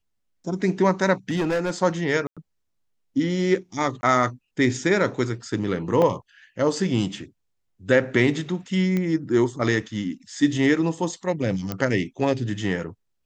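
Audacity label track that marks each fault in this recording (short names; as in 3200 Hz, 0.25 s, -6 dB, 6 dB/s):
1.290000	1.710000	clipped -19.5 dBFS
2.270000	2.370000	gap 96 ms
4.010000	4.030000	gap 20 ms
6.020000	6.020000	gap 2.3 ms
8.970000	8.970000	pop -14 dBFS
11.720000	11.720000	pop -13 dBFS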